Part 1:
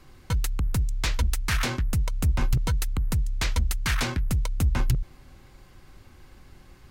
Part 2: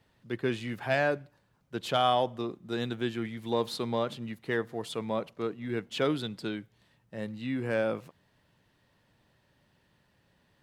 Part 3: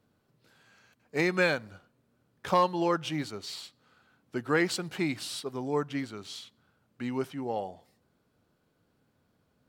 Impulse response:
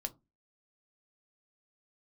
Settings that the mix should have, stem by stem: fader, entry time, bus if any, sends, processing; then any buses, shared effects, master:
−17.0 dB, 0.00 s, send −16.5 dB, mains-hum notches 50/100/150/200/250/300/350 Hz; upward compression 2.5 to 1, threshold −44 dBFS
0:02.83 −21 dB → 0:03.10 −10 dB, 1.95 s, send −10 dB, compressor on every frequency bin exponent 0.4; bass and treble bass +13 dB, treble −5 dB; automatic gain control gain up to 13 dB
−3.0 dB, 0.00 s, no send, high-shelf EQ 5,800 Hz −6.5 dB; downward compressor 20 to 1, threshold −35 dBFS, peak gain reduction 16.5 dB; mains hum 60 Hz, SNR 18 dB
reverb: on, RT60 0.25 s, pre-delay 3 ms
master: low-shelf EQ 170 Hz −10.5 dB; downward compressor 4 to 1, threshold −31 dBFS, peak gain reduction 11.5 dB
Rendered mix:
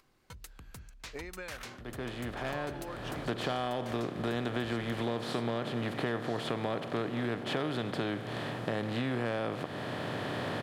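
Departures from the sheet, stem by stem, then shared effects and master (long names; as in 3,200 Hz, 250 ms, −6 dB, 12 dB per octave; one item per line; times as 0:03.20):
stem 2: entry 1.95 s → 1.55 s
stem 3: missing mains hum 60 Hz, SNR 18 dB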